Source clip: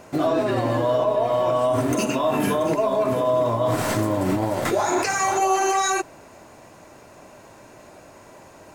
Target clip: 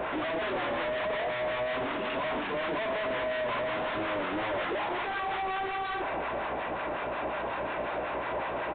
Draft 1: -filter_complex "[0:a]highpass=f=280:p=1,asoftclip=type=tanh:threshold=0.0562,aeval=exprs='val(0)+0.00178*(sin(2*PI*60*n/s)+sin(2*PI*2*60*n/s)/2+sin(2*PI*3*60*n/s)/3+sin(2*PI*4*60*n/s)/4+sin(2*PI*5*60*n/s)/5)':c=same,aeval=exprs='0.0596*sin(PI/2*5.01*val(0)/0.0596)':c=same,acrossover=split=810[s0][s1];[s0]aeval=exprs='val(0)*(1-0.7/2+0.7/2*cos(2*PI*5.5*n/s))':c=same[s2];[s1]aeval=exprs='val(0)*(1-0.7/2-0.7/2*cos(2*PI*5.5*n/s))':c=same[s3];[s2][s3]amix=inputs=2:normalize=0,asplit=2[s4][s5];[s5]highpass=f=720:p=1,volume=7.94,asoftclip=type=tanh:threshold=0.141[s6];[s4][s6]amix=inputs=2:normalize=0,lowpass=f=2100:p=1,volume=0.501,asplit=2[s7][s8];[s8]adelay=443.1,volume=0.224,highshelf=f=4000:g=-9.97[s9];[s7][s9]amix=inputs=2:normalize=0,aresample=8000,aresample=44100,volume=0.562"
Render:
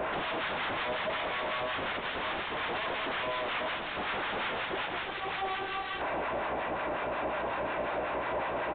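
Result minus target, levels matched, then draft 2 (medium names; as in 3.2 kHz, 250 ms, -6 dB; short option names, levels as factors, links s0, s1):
saturation: distortion -5 dB
-filter_complex "[0:a]highpass=f=280:p=1,asoftclip=type=tanh:threshold=0.0188,aeval=exprs='val(0)+0.00178*(sin(2*PI*60*n/s)+sin(2*PI*2*60*n/s)/2+sin(2*PI*3*60*n/s)/3+sin(2*PI*4*60*n/s)/4+sin(2*PI*5*60*n/s)/5)':c=same,aeval=exprs='0.0596*sin(PI/2*5.01*val(0)/0.0596)':c=same,acrossover=split=810[s0][s1];[s0]aeval=exprs='val(0)*(1-0.7/2+0.7/2*cos(2*PI*5.5*n/s))':c=same[s2];[s1]aeval=exprs='val(0)*(1-0.7/2-0.7/2*cos(2*PI*5.5*n/s))':c=same[s3];[s2][s3]amix=inputs=2:normalize=0,asplit=2[s4][s5];[s5]highpass=f=720:p=1,volume=7.94,asoftclip=type=tanh:threshold=0.141[s6];[s4][s6]amix=inputs=2:normalize=0,lowpass=f=2100:p=1,volume=0.501,asplit=2[s7][s8];[s8]adelay=443.1,volume=0.224,highshelf=f=4000:g=-9.97[s9];[s7][s9]amix=inputs=2:normalize=0,aresample=8000,aresample=44100,volume=0.562"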